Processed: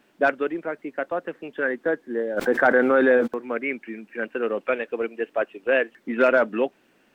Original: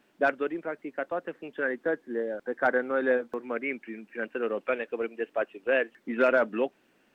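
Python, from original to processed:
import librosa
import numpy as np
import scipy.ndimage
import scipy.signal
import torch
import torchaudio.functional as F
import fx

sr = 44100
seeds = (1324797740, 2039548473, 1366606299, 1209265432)

y = fx.env_flatten(x, sr, amount_pct=70, at=(2.36, 3.26), fade=0.02)
y = F.gain(torch.from_numpy(y), 4.5).numpy()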